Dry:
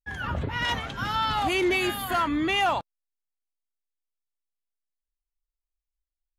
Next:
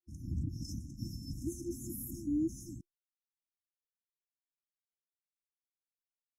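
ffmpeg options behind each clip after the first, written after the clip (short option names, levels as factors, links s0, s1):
-af "agate=range=0.0224:threshold=0.0251:ratio=3:detection=peak,afftfilt=real='re*(1-between(b*sr/4096,350,5200))':imag='im*(1-between(b*sr/4096,350,5200))':win_size=4096:overlap=0.75,volume=0.562"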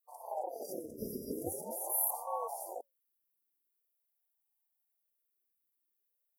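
-af "aexciter=amount=8.4:drive=7.1:freq=9300,asubboost=boost=7.5:cutoff=150,aeval=exprs='val(0)*sin(2*PI*570*n/s+570*0.45/0.44*sin(2*PI*0.44*n/s))':c=same,volume=0.668"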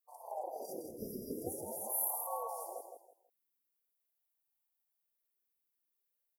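-af "aecho=1:1:162|324|486:0.473|0.128|0.0345,volume=0.708"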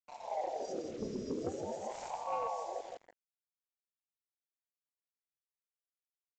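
-af "acrusher=bits=8:mix=0:aa=0.5,asoftclip=type=tanh:threshold=0.0237,aresample=16000,aresample=44100,volume=1.88"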